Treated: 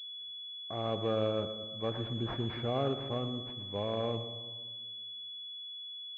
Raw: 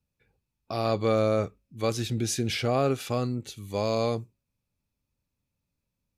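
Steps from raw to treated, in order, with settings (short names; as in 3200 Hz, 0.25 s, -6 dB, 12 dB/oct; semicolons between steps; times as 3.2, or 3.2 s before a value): split-band echo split 360 Hz, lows 0.18 s, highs 0.118 s, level -11 dB; on a send at -22.5 dB: reverb RT60 1.8 s, pre-delay 3 ms; on the sum: pulse-width modulation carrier 3400 Hz; gain -7.5 dB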